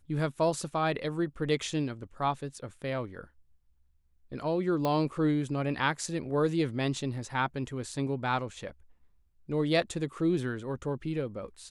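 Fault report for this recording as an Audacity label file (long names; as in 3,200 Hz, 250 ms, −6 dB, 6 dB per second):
4.850000	4.850000	click −17 dBFS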